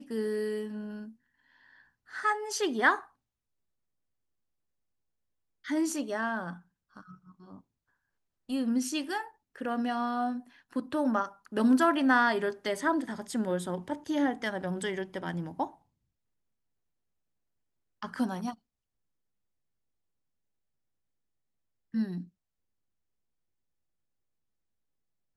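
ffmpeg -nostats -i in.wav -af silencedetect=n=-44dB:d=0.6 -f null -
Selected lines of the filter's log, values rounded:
silence_start: 1.10
silence_end: 2.11 | silence_duration: 1.01
silence_start: 3.04
silence_end: 5.65 | silence_duration: 2.61
silence_start: 7.58
silence_end: 8.49 | silence_duration: 0.91
silence_start: 15.70
silence_end: 18.02 | silence_duration: 2.33
silence_start: 18.54
silence_end: 21.94 | silence_duration: 3.40
silence_start: 22.24
silence_end: 25.36 | silence_duration: 3.12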